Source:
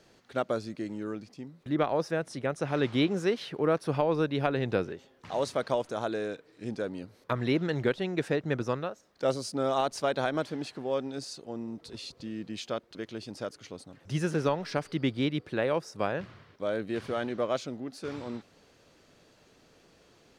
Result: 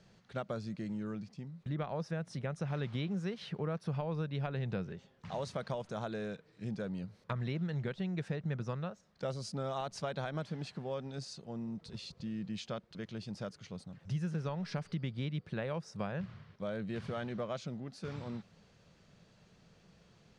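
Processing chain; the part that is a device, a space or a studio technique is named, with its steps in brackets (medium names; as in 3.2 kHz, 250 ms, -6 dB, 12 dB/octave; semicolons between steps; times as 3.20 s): jukebox (low-pass 7.7 kHz 12 dB/octave; resonant low shelf 230 Hz +6 dB, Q 3; compression 4:1, threshold -29 dBFS, peak gain reduction 10.5 dB); trim -5 dB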